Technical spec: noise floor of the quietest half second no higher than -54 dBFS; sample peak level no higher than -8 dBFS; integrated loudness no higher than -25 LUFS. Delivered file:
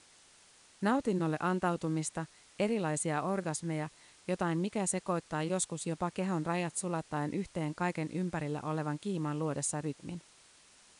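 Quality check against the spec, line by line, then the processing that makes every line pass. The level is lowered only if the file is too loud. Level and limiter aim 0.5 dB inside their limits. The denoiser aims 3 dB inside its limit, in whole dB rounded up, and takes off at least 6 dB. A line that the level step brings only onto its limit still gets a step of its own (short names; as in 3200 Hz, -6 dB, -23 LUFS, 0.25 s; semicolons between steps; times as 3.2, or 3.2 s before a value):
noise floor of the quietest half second -61 dBFS: OK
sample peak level -17.5 dBFS: OK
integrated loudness -34.5 LUFS: OK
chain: none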